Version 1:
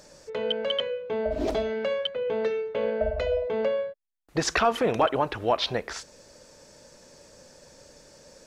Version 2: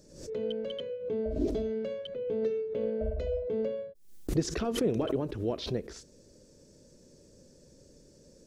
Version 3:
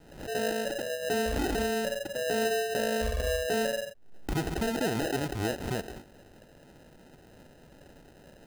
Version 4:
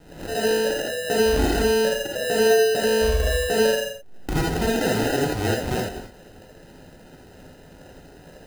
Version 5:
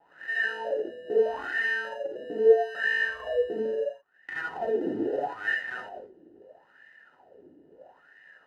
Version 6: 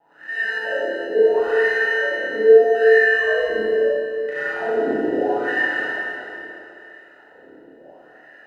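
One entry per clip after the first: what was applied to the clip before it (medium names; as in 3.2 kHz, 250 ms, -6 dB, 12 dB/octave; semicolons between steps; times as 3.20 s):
FFT filter 390 Hz 0 dB, 830 Hz -20 dB, 2.4 kHz -17 dB, 6 kHz -9 dB; swell ahead of each attack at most 87 dB/s
peak limiter -25 dBFS, peak gain reduction 8.5 dB; sample-and-hold 39×; trim +3.5 dB
gated-style reverb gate 100 ms rising, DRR -1 dB; trim +4.5 dB
small resonant body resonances 1.8/2.9 kHz, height 14 dB, ringing for 70 ms; wah-wah 0.76 Hz 310–1900 Hz, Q 8; trim +4.5 dB
Schroeder reverb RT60 2.7 s, combs from 26 ms, DRR -7.5 dB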